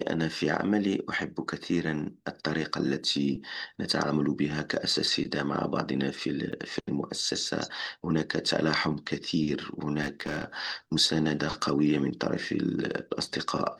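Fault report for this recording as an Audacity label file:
6.520000	6.530000	dropout 6.8 ms
10.010000	10.440000	clipped -26 dBFS

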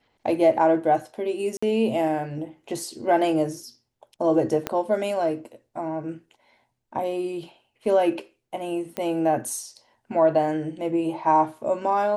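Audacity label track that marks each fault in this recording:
1.570000	1.620000	dropout 55 ms
4.670000	4.670000	pop -10 dBFS
8.970000	8.970000	pop -14 dBFS

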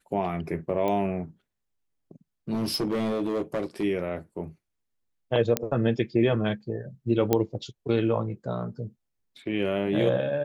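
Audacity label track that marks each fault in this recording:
0.880000	0.880000	pop -17 dBFS
2.540000	3.840000	clipped -23 dBFS
5.570000	5.570000	pop -7 dBFS
7.330000	7.330000	pop -8 dBFS

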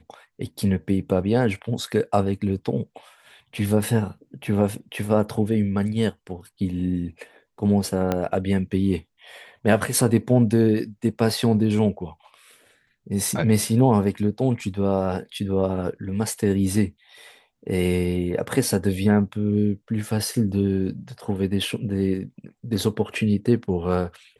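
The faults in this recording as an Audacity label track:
8.120000	8.120000	pop -10 dBFS

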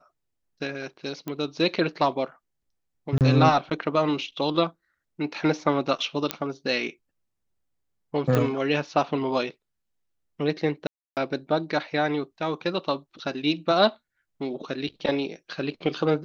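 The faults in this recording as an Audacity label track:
1.280000	1.280000	pop -18 dBFS
3.180000	3.210000	dropout 28 ms
6.310000	6.310000	pop -8 dBFS
8.350000	8.350000	pop -10 dBFS
10.870000	11.170000	dropout 298 ms

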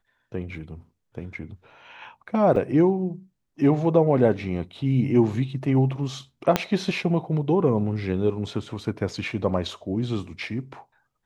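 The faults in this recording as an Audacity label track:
2.560000	2.560000	dropout 3.6 ms
6.560000	6.560000	pop -5 dBFS

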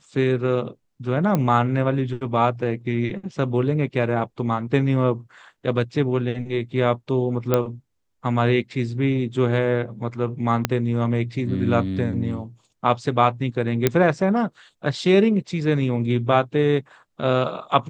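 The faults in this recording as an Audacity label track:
1.350000	1.350000	pop -9 dBFS
7.540000	7.540000	pop -6 dBFS
10.650000	10.650000	pop -4 dBFS
13.870000	13.870000	pop -3 dBFS

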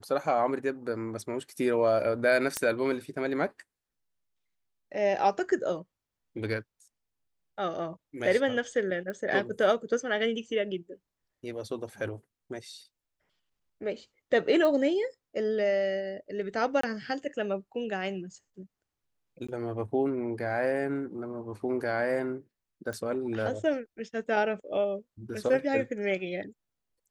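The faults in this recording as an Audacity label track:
2.570000	2.570000	pop -12 dBFS
9.100000	9.100000	pop -24 dBFS
14.650000	14.650000	pop -18 dBFS
16.810000	16.830000	dropout 24 ms
19.470000	19.480000	dropout 15 ms
22.930000	22.930000	pop -24 dBFS

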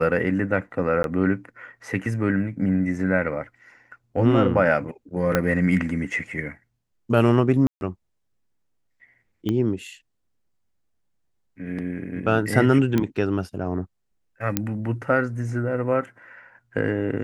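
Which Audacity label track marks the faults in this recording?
1.030000	1.040000	dropout 12 ms
5.350000	5.350000	pop -6 dBFS
7.670000	7.810000	dropout 141 ms
9.490000	9.490000	pop -14 dBFS
12.980000	12.980000	pop -10 dBFS
14.570000	14.570000	pop -5 dBFS

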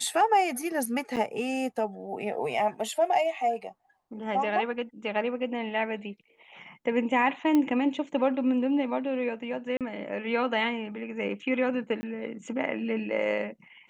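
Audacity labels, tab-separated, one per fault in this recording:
1.160000	1.170000	dropout 7.5 ms
7.550000	7.550000	pop -14 dBFS
9.770000	9.810000	dropout 37 ms
12.010000	12.030000	dropout 20 ms

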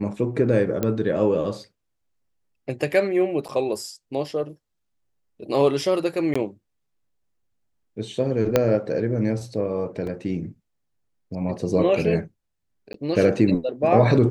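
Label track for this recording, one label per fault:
0.830000	0.830000	pop -10 dBFS
3.480000	3.490000	dropout 8.4 ms
6.340000	6.360000	dropout 15 ms
8.560000	8.560000	pop -4 dBFS
10.070000	10.070000	dropout 3 ms
12.930000	12.940000	dropout 13 ms

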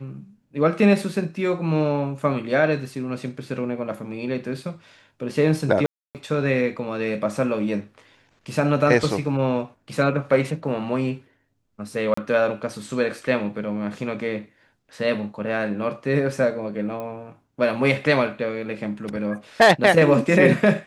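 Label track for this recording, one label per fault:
5.860000	6.150000	dropout 288 ms
12.140000	12.170000	dropout 34 ms
17.000000	17.000000	pop -20 dBFS

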